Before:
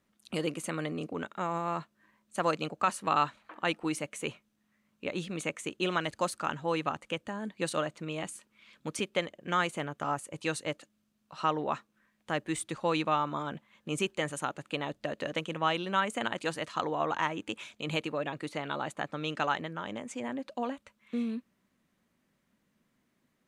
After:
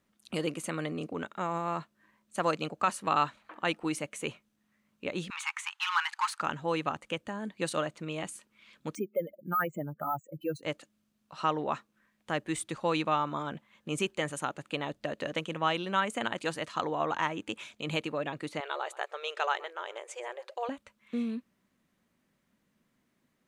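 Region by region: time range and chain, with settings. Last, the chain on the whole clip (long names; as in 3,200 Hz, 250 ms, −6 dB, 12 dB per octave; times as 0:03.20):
0:05.30–0:06.41: mid-hump overdrive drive 20 dB, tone 1,500 Hz, clips at −14.5 dBFS + linear-phase brick-wall high-pass 800 Hz
0:08.95–0:10.63: expanding power law on the bin magnitudes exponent 3.1 + parametric band 3,600 Hz −10.5 dB 0.45 octaves + bad sample-rate conversion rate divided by 3×, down filtered, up hold
0:18.60–0:20.69: linear-phase brick-wall high-pass 350 Hz + single-tap delay 126 ms −20 dB
whole clip: no processing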